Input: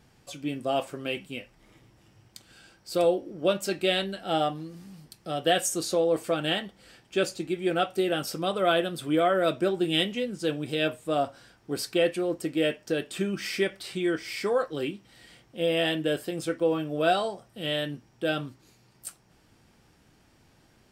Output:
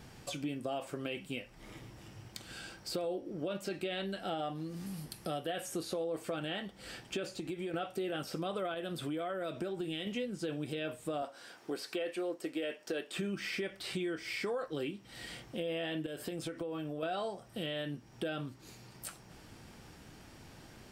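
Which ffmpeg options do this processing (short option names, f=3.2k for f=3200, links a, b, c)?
-filter_complex "[0:a]asettb=1/sr,asplit=3[a][b][c];[a]atrim=end=4.864[d];[b]atrim=start=4.86:end=6.04,asetpts=PTS-STARTPTS,afade=t=in:d=0.004:c=qsin,afade=t=out:st=1.176:d=0.004:c=qsin,equalizer=f=11k:t=o:w=0.37:g=13[e];[c]atrim=start=6.036[f];[d][e]acrossfade=d=0.004:c1=hsin:c2=qsin[g];[g][f]acrossfade=d=0.004:c1=qsin:c2=hsin,asettb=1/sr,asplit=3[h][i][j];[h]atrim=end=7.334[k];[i]atrim=start=7.33:end=7.74,asetpts=PTS-STARTPTS,afade=t=in:d=0.004:c=qsin,afade=t=out:st=0.406:d=0.004:c=qsin,acompressor=threshold=-34dB:ratio=6:attack=3.2:release=140:knee=1:detection=peak[l];[j]atrim=start=7.736[m];[k][l]acrossfade=d=0.004:c1=hsin:c2=qsin[n];[n][m]acrossfade=d=0.004:c1=qsin:c2=hsin,asettb=1/sr,asplit=3[o][p][q];[o]atrim=end=8.744[r];[p]atrim=start=8.74:end=10.07,asetpts=PTS-STARTPTS,afade=t=in:d=0.004:c=qsin,afade=t=out:st=1.326:d=0.004:c=qsin,acompressor=threshold=-31dB:ratio=4:attack=3.2:release=140:knee=1:detection=peak[s];[q]atrim=start=10.066[t];[r][s]acrossfade=d=0.004:c1=hsin:c2=qsin[u];[u][t]acrossfade=d=0.004:c1=qsin:c2=hsin,asettb=1/sr,asplit=3[v][w][x];[v]atrim=end=11.224[y];[w]atrim=start=11.22:end=13.16,asetpts=PTS-STARTPTS,afade=t=in:d=0.004:c=qsin,afade=t=out:st=1.936:d=0.004:c=qsin,highpass=330[z];[x]atrim=start=13.156[aa];[y][z]acrossfade=d=0.004:c1=hsin:c2=qsin[ab];[ab][aa]acrossfade=d=0.004:c1=qsin:c2=hsin,asettb=1/sr,asplit=3[ac][ad][ae];[ac]atrim=end=16.064[af];[ad]atrim=start=16.06:end=17.03,asetpts=PTS-STARTPTS,afade=t=in:d=0.004:c=qsin,afade=t=out:st=0.966:d=0.004:c=qsin,acompressor=threshold=-34dB:ratio=10:attack=3.2:release=140:knee=1:detection=peak[ag];[ae]atrim=start=17.026[ah];[af][ag]acrossfade=d=0.004:c1=hsin:c2=qsin[ai];[ai][ah]acrossfade=d=0.004:c1=qsin:c2=hsin,acrossover=split=3700[aj][ak];[ak]acompressor=threshold=-45dB:ratio=4:attack=1:release=60[al];[aj][al]amix=inputs=2:normalize=0,alimiter=limit=-21.5dB:level=0:latency=1:release=35,acompressor=threshold=-46dB:ratio=3,volume=7dB"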